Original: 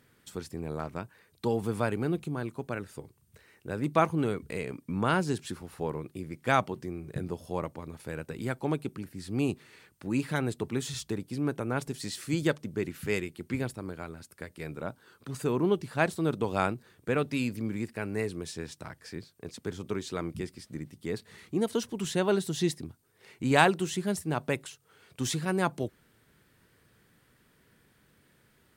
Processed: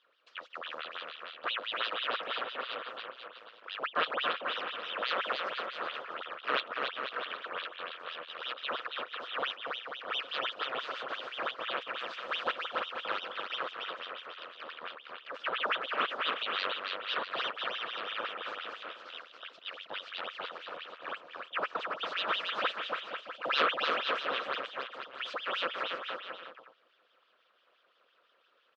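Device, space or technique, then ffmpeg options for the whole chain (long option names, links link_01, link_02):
voice changer toy: -filter_complex "[0:a]aeval=exprs='val(0)*sin(2*PI*1900*n/s+1900*0.8/5.9*sin(2*PI*5.9*n/s))':channel_layout=same,highpass=490,equalizer=frequency=500:width_type=q:width=4:gain=8,equalizer=frequency=840:width_type=q:width=4:gain=-8,equalizer=frequency=1300:width_type=q:width=4:gain=7,equalizer=frequency=2100:width_type=q:width=4:gain=-7,lowpass=frequency=3800:width=0.5412,lowpass=frequency=3800:width=1.3066,asettb=1/sr,asplit=3[link_01][link_02][link_03];[link_01]atrim=end=15.624[link_04];[link_02]atrim=start=15.62:end=16.05,asetpts=PTS-STARTPTS,afade=type=in:duration=0.004:curve=qsin,afade=type=out:start_time=0.426:duration=0.004:curve=qsin,highpass=160[link_05];[link_03]atrim=start=16.046[link_06];[link_04][link_05]acrossfade=duration=0.004:curve1=hsin:curve2=qsin[link_07];[link_07][link_06]acrossfade=duration=0.004:curve1=qsin:curve2=hsin,aecho=1:1:280|490|647.5|765.6|854.2:0.631|0.398|0.251|0.158|0.1,volume=-3dB"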